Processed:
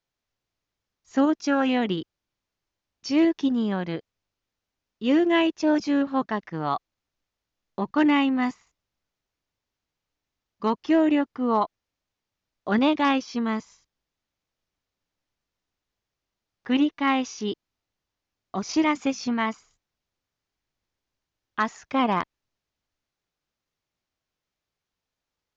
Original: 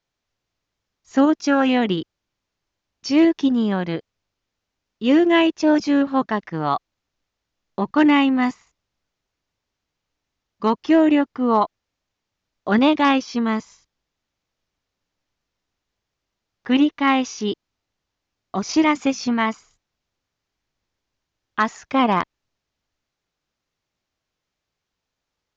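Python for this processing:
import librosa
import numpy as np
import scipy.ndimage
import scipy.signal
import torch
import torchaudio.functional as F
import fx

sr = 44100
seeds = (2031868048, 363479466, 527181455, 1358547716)

y = fx.buffer_glitch(x, sr, at_s=(16.94,), block=256, repeats=5)
y = y * 10.0 ** (-5.0 / 20.0)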